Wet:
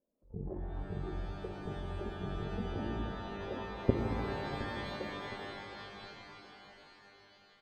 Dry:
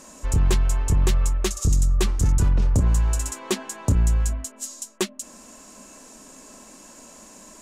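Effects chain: one diode to ground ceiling -26.5 dBFS; spectral noise reduction 21 dB; level quantiser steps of 22 dB; formant shift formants +4 st; ladder low-pass 600 Hz, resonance 45%; on a send: feedback echo 0.716 s, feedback 39%, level -16 dB; on the sum: shimmer reverb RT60 4 s, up +12 st, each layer -2 dB, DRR 3.5 dB; gain +12.5 dB

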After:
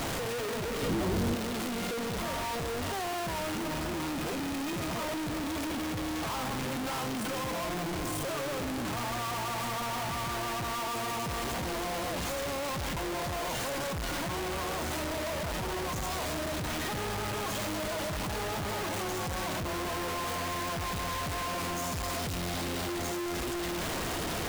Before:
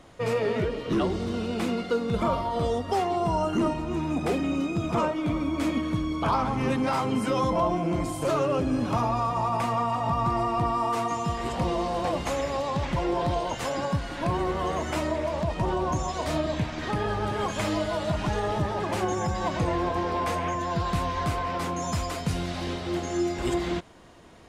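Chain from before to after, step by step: infinite clipping; 0.82–1.35 low shelf 340 Hz +9 dB; gain -6.5 dB

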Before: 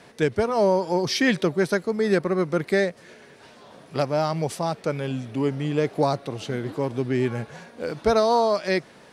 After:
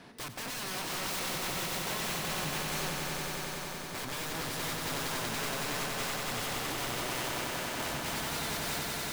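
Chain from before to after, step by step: ten-band EQ 125 Hz -4 dB, 250 Hz +3 dB, 500 Hz -8 dB, 2000 Hz -4 dB, 8000 Hz -8 dB; compressor 5:1, threshold -28 dBFS, peak gain reduction 9.5 dB; wrapped overs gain 34.5 dB; swelling echo 93 ms, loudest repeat 5, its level -5.5 dB

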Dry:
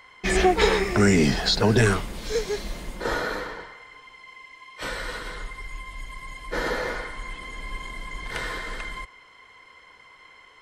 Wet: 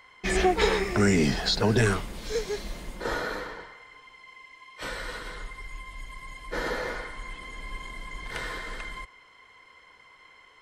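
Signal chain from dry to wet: 8.18–8.7 short-mantissa float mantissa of 6-bit; gain -3.5 dB

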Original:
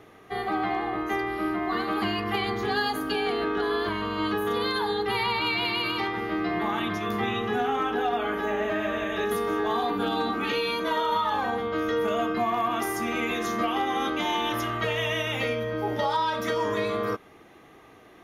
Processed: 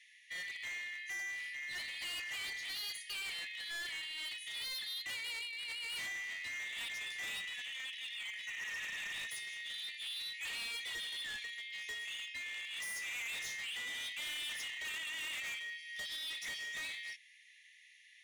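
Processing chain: FFT band-pass 1700–11000 Hz; negative-ratio compressor -33 dBFS, ratio -0.5; hard clip -38 dBFS, distortion -7 dB; gain -1.5 dB

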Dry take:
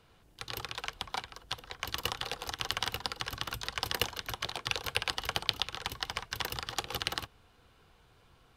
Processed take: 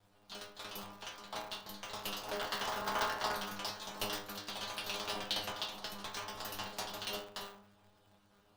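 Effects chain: slices in reverse order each 92 ms, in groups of 3; bell 2100 Hz -8.5 dB 0.54 oct; spectral gain 2.26–3.35, 450–2200 Hz +8 dB; bell 610 Hz +7 dB 0.71 oct; notch 480 Hz, Q 12; metallic resonator 100 Hz, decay 0.75 s, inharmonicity 0.002; polarity switched at an audio rate 100 Hz; gain +9 dB

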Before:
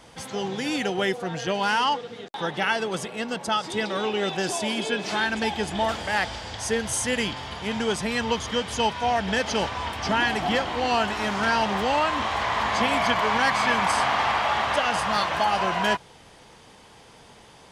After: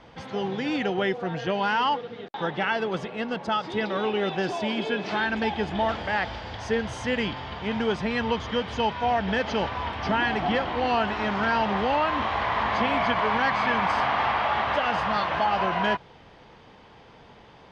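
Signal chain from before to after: in parallel at -2 dB: limiter -16 dBFS, peak gain reduction 6.5 dB; on the sum: air absorption 230 m; gain -4 dB

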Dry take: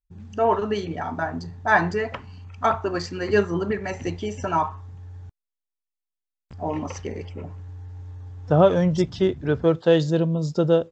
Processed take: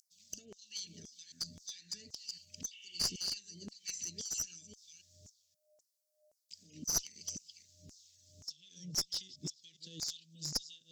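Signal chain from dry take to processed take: reverse delay 0.264 s, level -11 dB; whine 610 Hz -32 dBFS; compressor 16:1, threshold -29 dBFS, peak gain reduction 19.5 dB; elliptic band-stop 180–5000 Hz, stop band 80 dB; LFO high-pass saw down 1.9 Hz 440–6600 Hz; spectral repair 2.74–3.27, 560–3600 Hz after; one-sided clip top -46 dBFS; harmonic-percussive split percussive +4 dB; gain +10 dB

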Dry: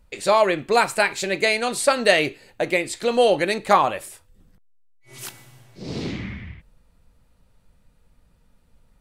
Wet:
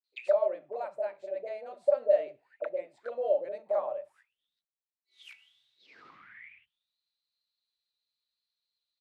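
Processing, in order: auto-wah 590–4300 Hz, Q 16, down, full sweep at -21 dBFS; three bands offset in time mids, highs, lows 40/80 ms, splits 210/630 Hz; gain +2.5 dB

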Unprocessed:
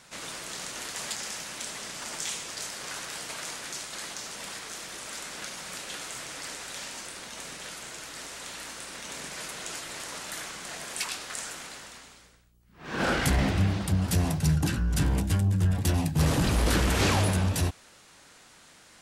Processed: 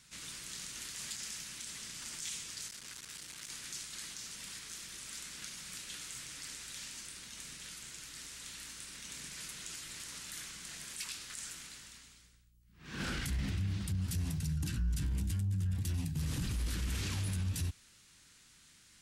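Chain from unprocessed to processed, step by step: passive tone stack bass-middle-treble 6-0-2; limiter -37.5 dBFS, peak gain reduction 10 dB; 2.68–3.5 core saturation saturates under 3800 Hz; gain +9.5 dB

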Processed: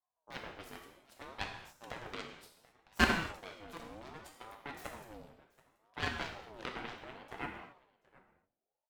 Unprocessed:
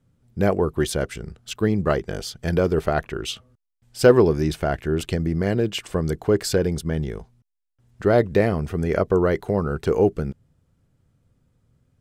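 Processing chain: bell 270 Hz -8 dB 0.79 oct; resonator 290 Hz, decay 0.81 s, mix 80%; added harmonics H 2 -16 dB, 3 -9 dB, 4 -18 dB, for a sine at -17.5 dBFS; echo 0.988 s -22 dB; non-linear reverb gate 0.39 s falling, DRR 1.5 dB; speed mistake 33 rpm record played at 45 rpm; ring modulator with a swept carrier 620 Hz, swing 45%, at 0.66 Hz; gain +8.5 dB

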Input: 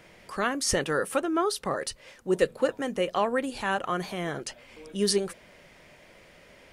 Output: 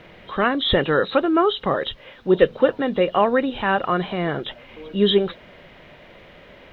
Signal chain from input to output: nonlinear frequency compression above 2800 Hz 4:1; in parallel at -7 dB: requantised 8-bit, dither triangular; on the sum: air absorption 310 m; gain +6 dB

